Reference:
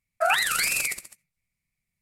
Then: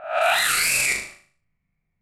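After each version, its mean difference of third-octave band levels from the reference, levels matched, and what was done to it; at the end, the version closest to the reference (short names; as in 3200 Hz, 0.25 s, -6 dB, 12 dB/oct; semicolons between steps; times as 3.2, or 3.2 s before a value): 4.5 dB: spectral swells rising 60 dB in 0.48 s; low-pass opened by the level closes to 1400 Hz, open at -18 dBFS; limiter -19.5 dBFS, peak gain reduction 11 dB; flutter echo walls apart 6.5 m, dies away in 0.46 s; gain +6.5 dB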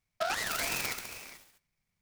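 10.5 dB: compressor, threshold -30 dBFS, peak gain reduction 12 dB; non-linear reverb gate 0.46 s rising, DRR 11 dB; noise-modulated delay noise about 2800 Hz, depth 0.053 ms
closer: first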